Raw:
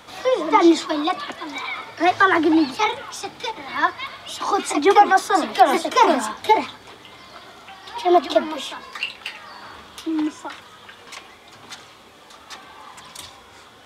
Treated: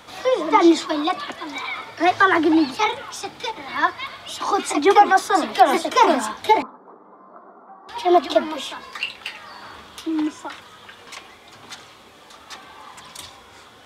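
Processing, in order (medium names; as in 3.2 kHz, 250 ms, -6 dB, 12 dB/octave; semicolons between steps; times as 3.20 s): 6.62–7.89 s: elliptic band-pass 190–1200 Hz, stop band 40 dB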